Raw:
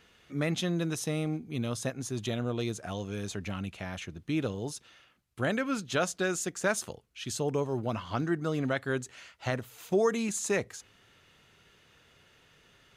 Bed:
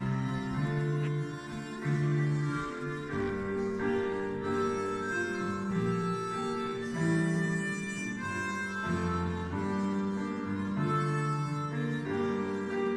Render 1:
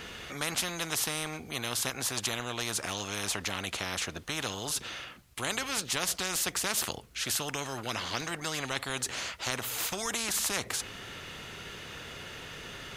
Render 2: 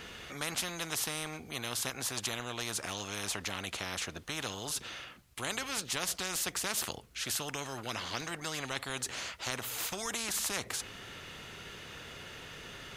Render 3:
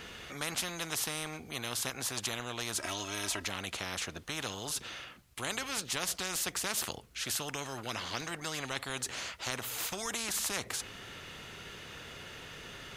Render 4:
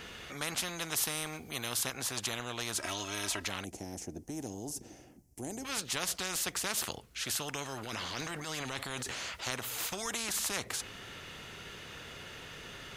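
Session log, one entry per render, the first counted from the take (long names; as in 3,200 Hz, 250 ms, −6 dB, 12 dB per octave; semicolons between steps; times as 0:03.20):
every bin compressed towards the loudest bin 4 to 1
level −3.5 dB
0:02.74–0:03.47: comb filter 3.1 ms
0:00.96–0:01.83: high-shelf EQ 11,000 Hz +8.5 dB; 0:03.64–0:05.65: drawn EQ curve 160 Hz 0 dB, 310 Hz +7 dB, 530 Hz −5 dB, 780 Hz −2 dB, 1,200 Hz −24 dB, 1,900 Hz −17 dB, 3,800 Hz −24 dB, 5,600 Hz −4 dB; 0:07.75–0:09.41: transient designer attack −8 dB, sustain +6 dB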